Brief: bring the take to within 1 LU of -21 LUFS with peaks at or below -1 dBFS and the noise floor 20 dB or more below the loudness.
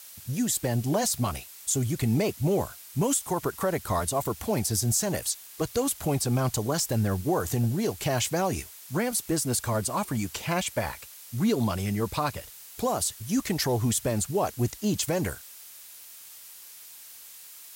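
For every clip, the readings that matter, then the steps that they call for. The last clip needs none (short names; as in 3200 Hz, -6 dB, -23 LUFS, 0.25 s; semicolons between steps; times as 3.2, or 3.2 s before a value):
noise floor -47 dBFS; noise floor target -48 dBFS; loudness -27.5 LUFS; peak -14.0 dBFS; loudness target -21.0 LUFS
-> denoiser 6 dB, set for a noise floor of -47 dBFS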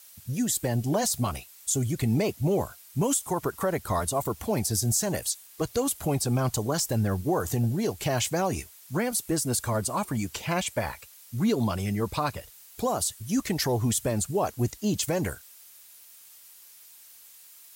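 noise floor -52 dBFS; loudness -28.0 LUFS; peak -14.0 dBFS; loudness target -21.0 LUFS
-> gain +7 dB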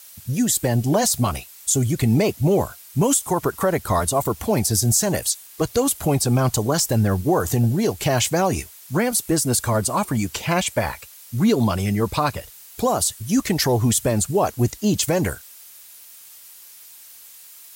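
loudness -21.0 LUFS; peak -7.0 dBFS; noise floor -45 dBFS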